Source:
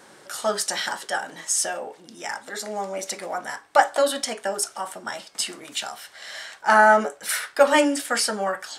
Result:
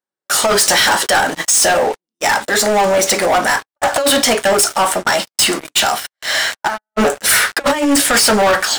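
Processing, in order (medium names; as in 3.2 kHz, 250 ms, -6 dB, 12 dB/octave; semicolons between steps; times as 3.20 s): compressor with a negative ratio -24 dBFS, ratio -0.5; gate -35 dBFS, range -36 dB; waveshaping leveller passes 5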